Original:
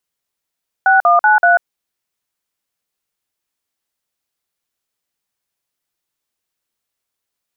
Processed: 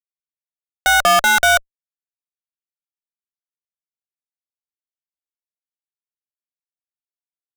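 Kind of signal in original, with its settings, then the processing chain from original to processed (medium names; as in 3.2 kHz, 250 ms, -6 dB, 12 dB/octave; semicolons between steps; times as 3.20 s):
DTMF "6193", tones 142 ms, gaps 48 ms, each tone -10 dBFS
peaking EQ 1.4 kHz +3 dB 0.55 oct; fuzz box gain 42 dB, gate -45 dBFS; peaking EQ 580 Hz +12.5 dB 0.42 oct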